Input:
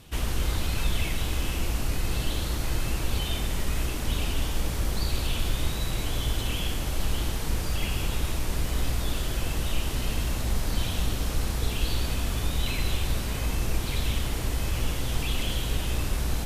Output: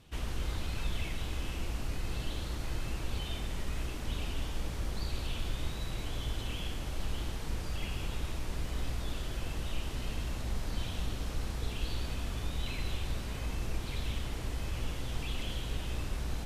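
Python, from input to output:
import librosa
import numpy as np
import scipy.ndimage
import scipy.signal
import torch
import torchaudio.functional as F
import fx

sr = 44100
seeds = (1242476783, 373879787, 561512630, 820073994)

y = fx.high_shelf(x, sr, hz=9700.0, db=-11.5)
y = y * 10.0 ** (-8.0 / 20.0)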